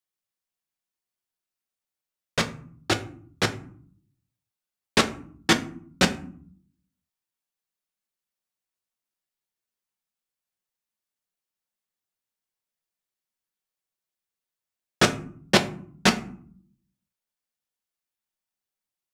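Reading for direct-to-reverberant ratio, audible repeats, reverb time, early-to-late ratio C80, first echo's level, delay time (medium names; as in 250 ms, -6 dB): 5.0 dB, no echo, 0.55 s, 18.5 dB, no echo, no echo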